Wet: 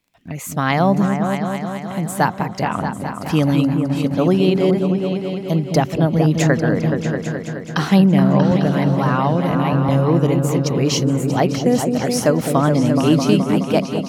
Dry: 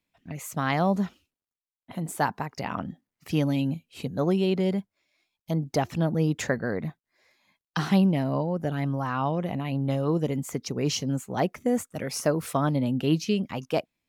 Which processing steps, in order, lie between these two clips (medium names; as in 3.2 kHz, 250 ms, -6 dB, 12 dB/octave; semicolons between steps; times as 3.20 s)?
delay with an opening low-pass 212 ms, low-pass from 400 Hz, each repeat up 2 oct, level -3 dB; crackle 22 per s -55 dBFS; 8.51–9.89 s: three bands compressed up and down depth 70%; trim +8 dB